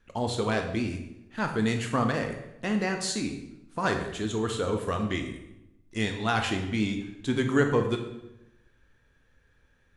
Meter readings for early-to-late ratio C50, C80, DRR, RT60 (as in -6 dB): 7.0 dB, 9.5 dB, 4.0 dB, 0.90 s